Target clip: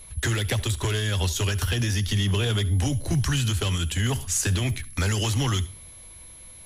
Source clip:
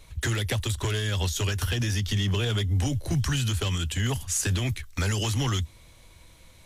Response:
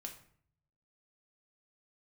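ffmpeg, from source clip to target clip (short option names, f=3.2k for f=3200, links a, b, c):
-filter_complex "[0:a]asplit=2[a][b];[1:a]atrim=start_sample=2205,asetrate=66150,aresample=44100,adelay=69[c];[b][c]afir=irnorm=-1:irlink=0,volume=-11dB[d];[a][d]amix=inputs=2:normalize=0,aeval=exprs='val(0)+0.00501*sin(2*PI*11000*n/s)':c=same,volume=2dB"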